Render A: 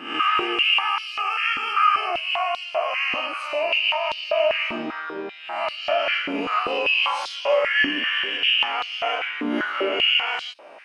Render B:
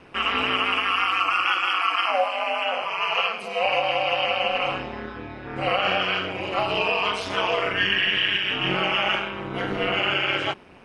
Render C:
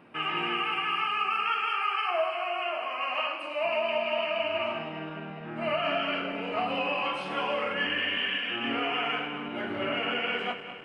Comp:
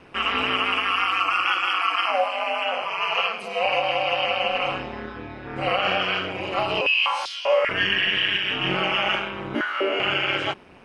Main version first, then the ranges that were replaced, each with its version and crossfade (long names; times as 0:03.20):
B
0:06.81–0:07.69: punch in from A
0:09.55–0:10.00: punch in from A
not used: C